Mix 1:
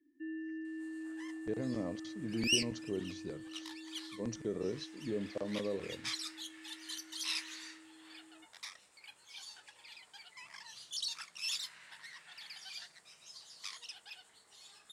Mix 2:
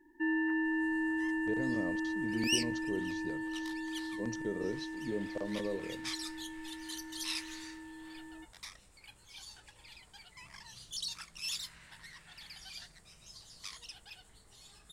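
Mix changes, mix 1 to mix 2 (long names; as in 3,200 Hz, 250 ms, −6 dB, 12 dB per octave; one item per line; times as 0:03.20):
first sound: remove formant filter i
second sound: remove meter weighting curve A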